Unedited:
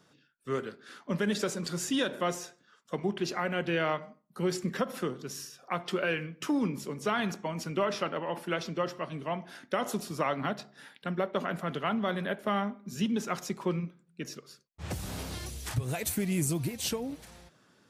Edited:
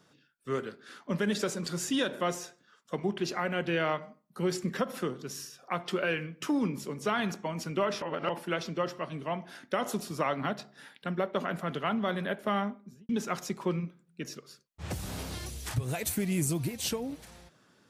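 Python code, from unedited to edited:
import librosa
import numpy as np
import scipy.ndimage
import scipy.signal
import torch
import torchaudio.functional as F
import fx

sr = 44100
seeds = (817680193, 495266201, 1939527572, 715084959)

y = fx.studio_fade_out(x, sr, start_s=12.65, length_s=0.44)
y = fx.edit(y, sr, fx.reverse_span(start_s=8.02, length_s=0.27), tone=tone)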